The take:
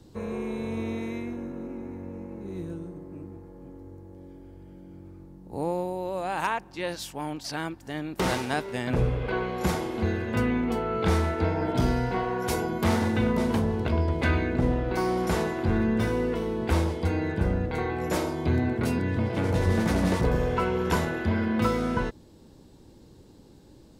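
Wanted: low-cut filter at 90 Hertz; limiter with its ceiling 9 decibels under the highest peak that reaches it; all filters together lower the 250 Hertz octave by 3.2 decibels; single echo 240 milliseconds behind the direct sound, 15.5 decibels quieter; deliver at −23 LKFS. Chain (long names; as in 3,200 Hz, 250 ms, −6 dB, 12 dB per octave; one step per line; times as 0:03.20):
high-pass filter 90 Hz
parametric band 250 Hz −4 dB
brickwall limiter −22 dBFS
single-tap delay 240 ms −15.5 dB
level +9 dB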